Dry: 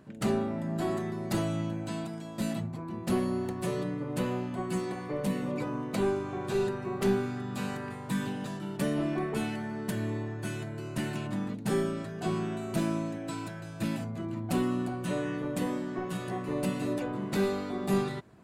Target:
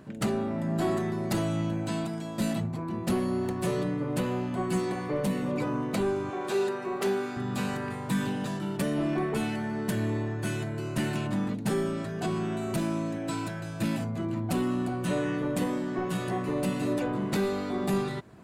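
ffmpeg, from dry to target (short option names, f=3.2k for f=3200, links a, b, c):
-filter_complex "[0:a]asettb=1/sr,asplit=3[a][b][c];[a]atrim=end=6.304[d];[b]atrim=start=6.3:end=7.37,asetpts=PTS-STARTPTS,afade=t=in:d=0.004:c=qsin,afade=t=out:st=1.066:d=0.004:c=qsin,highpass=320[e];[c]atrim=start=7.366[f];[d][e]acrossfade=d=0.004:c1=hsin:c2=qsin[g];[g][f]acrossfade=d=0.004:c1=qsin:c2=hsin,alimiter=limit=-22dB:level=0:latency=1:release=419,asplit=2[h][i];[i]asoftclip=type=tanh:threshold=-35dB,volume=-6dB[j];[h][j]amix=inputs=2:normalize=0,volume=2dB"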